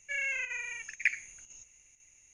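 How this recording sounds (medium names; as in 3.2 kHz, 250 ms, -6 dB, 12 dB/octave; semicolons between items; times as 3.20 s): chopped level 2 Hz, depth 60%, duty 90%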